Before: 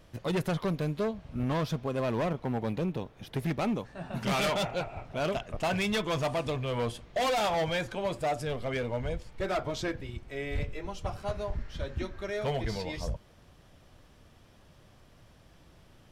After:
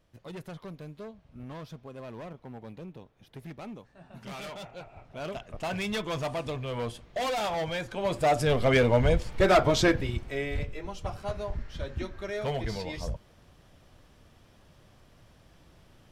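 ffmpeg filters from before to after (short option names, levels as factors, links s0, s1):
-af "volume=3.35,afade=t=in:st=4.72:d=1.22:silence=0.316228,afade=t=in:st=7.88:d=0.81:silence=0.237137,afade=t=out:st=9.93:d=0.65:silence=0.298538"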